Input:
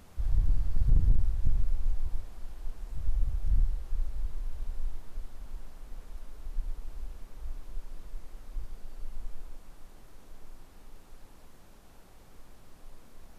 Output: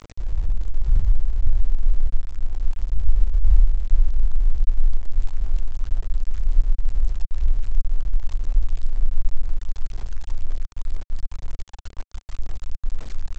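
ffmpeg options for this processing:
ffmpeg -i in.wav -af "aphaser=in_gain=1:out_gain=1:delay=1.2:decay=0.76:speed=2:type=sinusoidal,acompressor=threshold=-30dB:ratio=2,aresample=16000,aeval=exprs='val(0)*gte(abs(val(0)),0.0158)':channel_layout=same,aresample=44100,asubboost=boost=5:cutoff=79" out.wav

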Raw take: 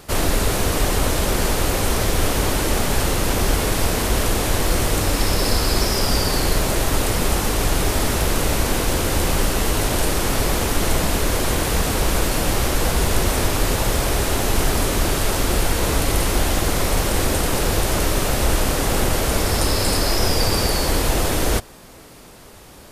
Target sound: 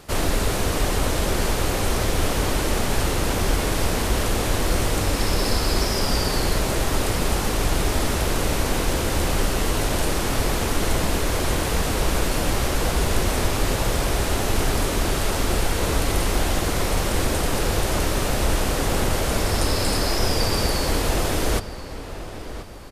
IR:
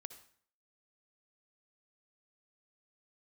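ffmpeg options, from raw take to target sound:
-filter_complex "[0:a]highshelf=frequency=11000:gain=-6,asplit=2[link_01][link_02];[link_02]adelay=1032,lowpass=frequency=3400:poles=1,volume=-12.5dB,asplit=2[link_03][link_04];[link_04]adelay=1032,lowpass=frequency=3400:poles=1,volume=0.45,asplit=2[link_05][link_06];[link_06]adelay=1032,lowpass=frequency=3400:poles=1,volume=0.45,asplit=2[link_07][link_08];[link_08]adelay=1032,lowpass=frequency=3400:poles=1,volume=0.45[link_09];[link_03][link_05][link_07][link_09]amix=inputs=4:normalize=0[link_10];[link_01][link_10]amix=inputs=2:normalize=0,volume=-2.5dB"

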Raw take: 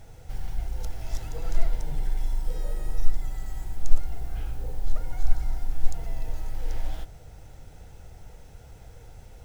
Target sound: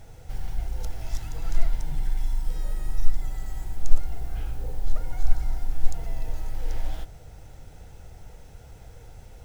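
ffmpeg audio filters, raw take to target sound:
ffmpeg -i in.wav -filter_complex "[0:a]asettb=1/sr,asplit=3[link_01][link_02][link_03];[link_01]atrim=end=1.094[link_04];[link_02]atrim=start=1.09:end=3.18,asetpts=PTS-STARTPTS,afade=type=in:duration=0.004:curve=qsin,afade=type=out:start_time=2.086:duration=0.004:curve=qsin,equalizer=frequency=490:width_type=o:width=0.74:gain=-9[link_05];[link_03]atrim=start=3.176[link_06];[link_04][link_05]acrossfade=duration=0.004:curve1=hsin:curve2=qsin[link_07];[link_07][link_06]acrossfade=duration=0.004:curve1=qsin:curve2=hsin,volume=1dB" out.wav

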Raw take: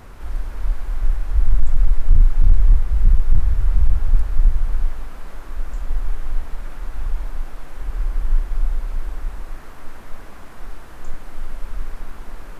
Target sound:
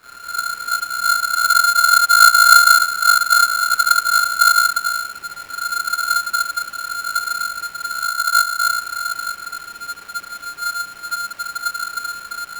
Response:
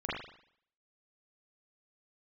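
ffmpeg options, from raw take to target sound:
-filter_complex "[0:a]asettb=1/sr,asplit=3[link_01][link_02][link_03];[link_01]atrim=end=8.024[link_04];[link_02]atrim=start=8.02:end=8.6,asetpts=PTS-STARTPTS,afade=type=in:duration=0.004:curve=qsin,afade=type=out:start_time=0.576:duration=0.004:curve=qsin,equalizer=frequency=910:width_type=o:width=1.6:gain=-12.5[link_05];[link_03]atrim=start=8.596[link_06];[link_04][link_05]acrossfade=duration=0.004:curve1=hsin:curve2=qsin[link_07];[link_07][link_06]acrossfade=duration=0.004:curve1=qsin:curve2=hsin[link_08];[1:a]atrim=start_sample=2205,afade=type=out:start_time=0.31:duration=0.01,atrim=end_sample=14112,asetrate=52920,aresample=44100[link_09];[link_08][link_09]afir=irnorm=-1:irlink=0,aeval=exprs='val(0)*sgn(sin(2*PI*1400*n/s))':channel_layout=same,volume=-7dB"

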